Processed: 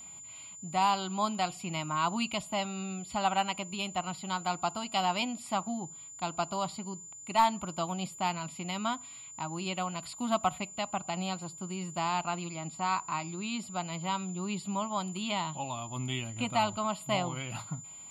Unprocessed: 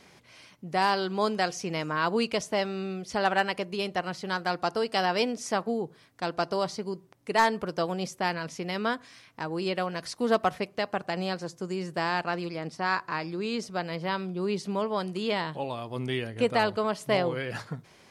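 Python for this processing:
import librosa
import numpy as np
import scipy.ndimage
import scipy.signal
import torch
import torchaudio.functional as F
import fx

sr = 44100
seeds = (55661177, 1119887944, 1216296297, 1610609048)

y = fx.fixed_phaser(x, sr, hz=1700.0, stages=6)
y = y + 10.0 ** (-45.0 / 20.0) * np.sin(2.0 * np.pi * 7100.0 * np.arange(len(y)) / sr)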